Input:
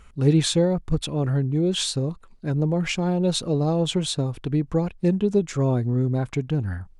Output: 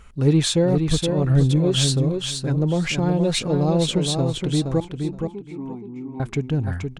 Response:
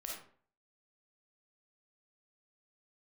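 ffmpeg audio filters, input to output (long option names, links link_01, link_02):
-filter_complex "[0:a]asettb=1/sr,asplit=3[link_01][link_02][link_03];[link_01]atrim=end=1.294[link_04];[link_02]atrim=start=1.29:end=1.92,asetpts=PTS-STARTPTS,afade=type=in:duration=0.004:curve=qsin,afade=type=out:start_time=0.626:duration=0.004:curve=qsin,aecho=1:1:7.5:0.8,atrim=end_sample=27783[link_05];[link_03]atrim=start=1.916[link_06];[link_04][link_05]acrossfade=duration=0.004:curve1=hsin:curve2=qsin[link_07];[link_07][link_06]acrossfade=duration=0.004:curve1=qsin:curve2=hsin,asplit=2[link_08][link_09];[link_09]asoftclip=type=tanh:threshold=-21.5dB,volume=-10dB[link_10];[link_08][link_10]amix=inputs=2:normalize=0,asettb=1/sr,asplit=3[link_11][link_12][link_13];[link_11]atrim=end=4.804[link_14];[link_12]atrim=start=4.8:end=6.2,asetpts=PTS-STARTPTS,afade=type=in:duration=0.004:curve=qsin,afade=type=out:start_time=1.396:duration=0.004:curve=qsin,asplit=3[link_15][link_16][link_17];[link_15]bandpass=frequency=300:width_type=q:width=8,volume=0dB[link_18];[link_16]bandpass=frequency=870:width_type=q:width=8,volume=-6dB[link_19];[link_17]bandpass=frequency=2240:width_type=q:width=8,volume=-9dB[link_20];[link_18][link_19][link_20]amix=inputs=3:normalize=0[link_21];[link_13]atrim=start=6.196[link_22];[link_14][link_21]acrossfade=duration=0.004:curve1=hsin:curve2=qsin[link_23];[link_23][link_22]acrossfade=duration=0.004:curve1=qsin:curve2=hsin,aecho=1:1:471|942|1413:0.531|0.0956|0.0172"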